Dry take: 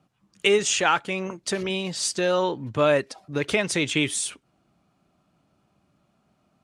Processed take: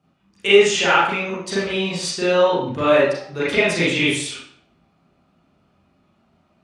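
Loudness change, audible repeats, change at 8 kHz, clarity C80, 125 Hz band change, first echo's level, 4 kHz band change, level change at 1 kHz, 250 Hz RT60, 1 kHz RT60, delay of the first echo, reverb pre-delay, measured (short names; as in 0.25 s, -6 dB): +5.5 dB, none, -1.5 dB, 4.5 dB, +3.5 dB, none, +5.0 dB, +5.5 dB, 0.60 s, 0.60 s, none, 33 ms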